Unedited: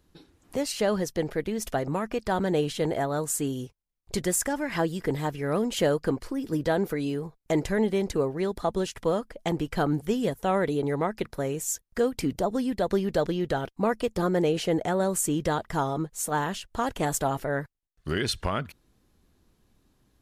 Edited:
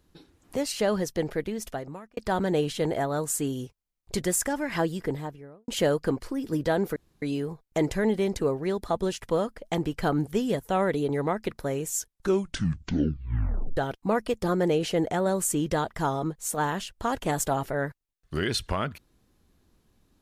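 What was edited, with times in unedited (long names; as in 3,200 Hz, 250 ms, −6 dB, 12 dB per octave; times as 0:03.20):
0:01.35–0:02.17: fade out
0:04.86–0:05.68: fade out and dull
0:06.96: splice in room tone 0.26 s
0:11.70: tape stop 1.81 s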